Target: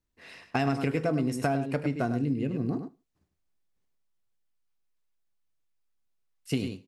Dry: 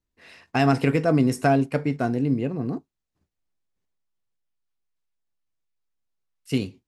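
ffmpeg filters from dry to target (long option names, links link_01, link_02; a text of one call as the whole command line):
ffmpeg -i in.wav -filter_complex "[0:a]asettb=1/sr,asplit=3[link_01][link_02][link_03];[link_01]atrim=end=2.114[link_04];[link_02]atrim=start=2.11:end=2.7,asetpts=PTS-STARTPTS,afade=type=in:duration=0.004:curve=qsin,afade=type=out:start_time=0.586:duration=0.004:curve=qsin,equalizer=frequency=830:width_type=o:width=1.3:gain=-11.5[link_05];[link_03]atrim=start=2.696[link_06];[link_04][link_05]acrossfade=duration=0.004:curve1=hsin:curve2=qsin[link_07];[link_07][link_06]acrossfade=duration=0.004:curve1=qsin:curve2=hsin,asplit=2[link_08][link_09];[link_09]aecho=0:1:101:0.335[link_10];[link_08][link_10]amix=inputs=2:normalize=0,acompressor=threshold=-24dB:ratio=6,asplit=2[link_11][link_12];[link_12]aecho=0:1:75|150:0.0794|0.0175[link_13];[link_11][link_13]amix=inputs=2:normalize=0" out.wav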